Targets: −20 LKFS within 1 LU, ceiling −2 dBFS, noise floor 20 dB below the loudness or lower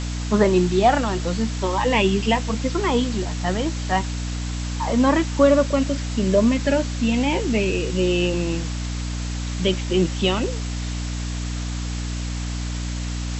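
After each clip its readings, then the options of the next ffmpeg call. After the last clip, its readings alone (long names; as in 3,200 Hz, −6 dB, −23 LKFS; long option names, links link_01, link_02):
mains hum 60 Hz; hum harmonics up to 300 Hz; level of the hum −24 dBFS; background noise floor −27 dBFS; target noise floor −42 dBFS; integrated loudness −22.0 LKFS; sample peak −4.0 dBFS; target loudness −20.0 LKFS
→ -af "bandreject=frequency=60:width_type=h:width=6,bandreject=frequency=120:width_type=h:width=6,bandreject=frequency=180:width_type=h:width=6,bandreject=frequency=240:width_type=h:width=6,bandreject=frequency=300:width_type=h:width=6"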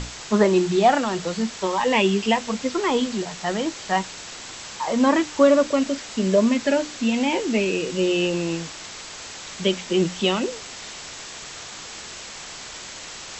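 mains hum none found; background noise floor −38 dBFS; target noise floor −42 dBFS
→ -af "afftdn=noise_reduction=6:noise_floor=-38"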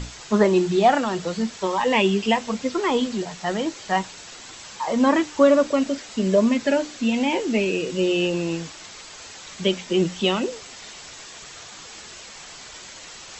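background noise floor −41 dBFS; target noise floor −42 dBFS
→ -af "afftdn=noise_reduction=6:noise_floor=-41"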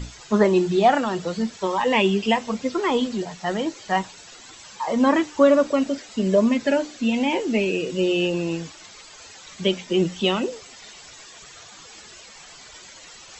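background noise floor −45 dBFS; integrated loudness −22.0 LKFS; sample peak −5.0 dBFS; target loudness −20.0 LKFS
→ -af "volume=2dB"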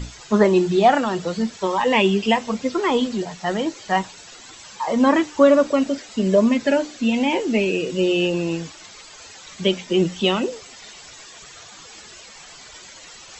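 integrated loudness −20.0 LKFS; sample peak −3.0 dBFS; background noise floor −43 dBFS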